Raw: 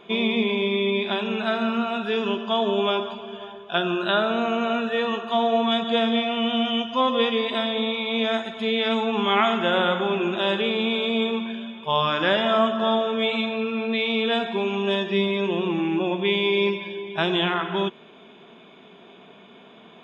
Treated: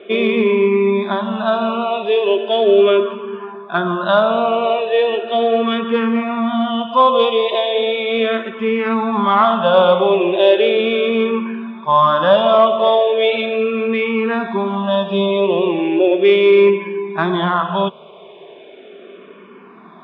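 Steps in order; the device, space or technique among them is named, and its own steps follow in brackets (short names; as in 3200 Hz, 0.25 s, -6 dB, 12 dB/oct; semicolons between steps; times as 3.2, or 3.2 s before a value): barber-pole phaser into a guitar amplifier (endless phaser -0.37 Hz; soft clip -13.5 dBFS, distortion -24 dB; speaker cabinet 77–3900 Hz, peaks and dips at 120 Hz -8 dB, 180 Hz +3 dB, 390 Hz +7 dB, 570 Hz +10 dB, 1100 Hz +8 dB); gain +6.5 dB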